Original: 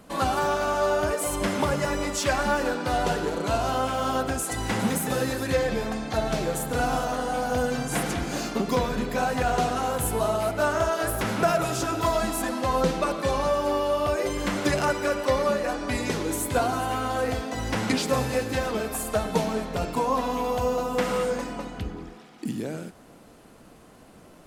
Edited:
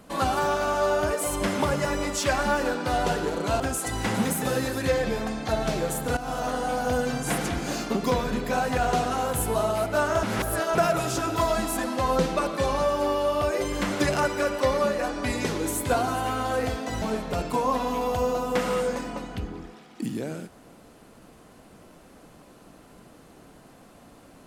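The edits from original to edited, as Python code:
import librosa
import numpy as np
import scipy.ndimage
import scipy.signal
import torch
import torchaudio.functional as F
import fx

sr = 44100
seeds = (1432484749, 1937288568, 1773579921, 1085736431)

y = fx.edit(x, sr, fx.cut(start_s=3.6, length_s=0.65),
    fx.fade_in_from(start_s=6.82, length_s=0.29, floor_db=-14.0),
    fx.reverse_span(start_s=10.88, length_s=0.52),
    fx.cut(start_s=17.67, length_s=1.78), tone=tone)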